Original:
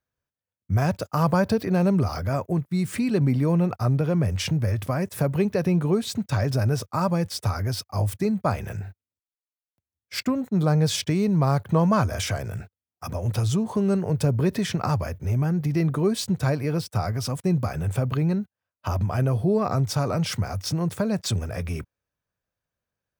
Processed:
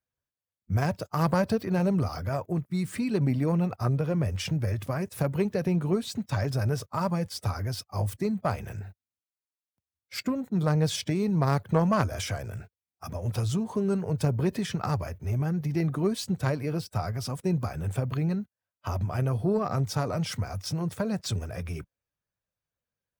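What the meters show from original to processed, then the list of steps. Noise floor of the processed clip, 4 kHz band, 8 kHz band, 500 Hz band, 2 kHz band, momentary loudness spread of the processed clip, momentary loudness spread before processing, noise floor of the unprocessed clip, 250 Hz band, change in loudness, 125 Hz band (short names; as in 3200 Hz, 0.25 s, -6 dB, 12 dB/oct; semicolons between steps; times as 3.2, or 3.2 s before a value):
under -85 dBFS, -5.0 dB, -5.5 dB, -4.0 dB, -3.5 dB, 8 LU, 7 LU, under -85 dBFS, -4.5 dB, -4.5 dB, -4.5 dB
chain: bin magnitudes rounded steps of 15 dB; added harmonics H 3 -17 dB, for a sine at -7.5 dBFS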